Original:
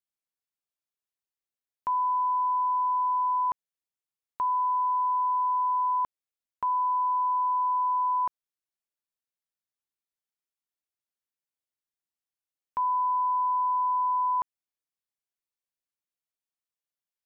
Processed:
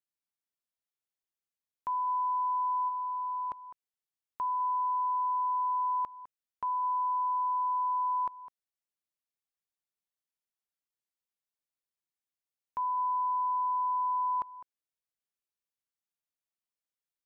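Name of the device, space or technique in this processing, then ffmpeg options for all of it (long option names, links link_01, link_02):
ducked delay: -filter_complex "[0:a]asplit=3[link_01][link_02][link_03];[link_02]adelay=206,volume=-5.5dB[link_04];[link_03]apad=whole_len=770073[link_05];[link_04][link_05]sidechaincompress=threshold=-38dB:ratio=8:attack=16:release=745[link_06];[link_01][link_06]amix=inputs=2:normalize=0,asplit=3[link_07][link_08][link_09];[link_07]afade=type=out:start_time=2.88:duration=0.02[link_10];[link_08]equalizer=frequency=1100:width_type=o:width=0.54:gain=-5.5,afade=type=in:start_time=2.88:duration=0.02,afade=type=out:start_time=3.51:duration=0.02[link_11];[link_09]afade=type=in:start_time=3.51:duration=0.02[link_12];[link_10][link_11][link_12]amix=inputs=3:normalize=0,volume=-5dB"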